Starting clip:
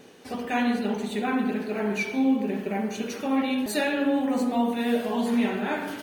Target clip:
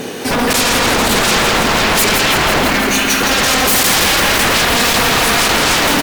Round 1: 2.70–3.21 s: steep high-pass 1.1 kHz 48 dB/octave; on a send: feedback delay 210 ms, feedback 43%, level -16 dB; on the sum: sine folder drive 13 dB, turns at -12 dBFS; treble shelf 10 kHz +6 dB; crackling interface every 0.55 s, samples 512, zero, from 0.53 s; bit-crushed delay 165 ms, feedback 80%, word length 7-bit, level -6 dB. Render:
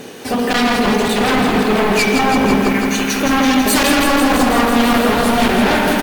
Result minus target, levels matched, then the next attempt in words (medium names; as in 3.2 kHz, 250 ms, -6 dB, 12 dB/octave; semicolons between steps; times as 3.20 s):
sine folder: distortion -23 dB
2.70–3.21 s: steep high-pass 1.1 kHz 48 dB/octave; on a send: feedback delay 210 ms, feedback 43%, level -16 dB; on the sum: sine folder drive 22 dB, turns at -12 dBFS; treble shelf 10 kHz +6 dB; crackling interface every 0.55 s, samples 512, zero, from 0.53 s; bit-crushed delay 165 ms, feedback 80%, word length 7-bit, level -6 dB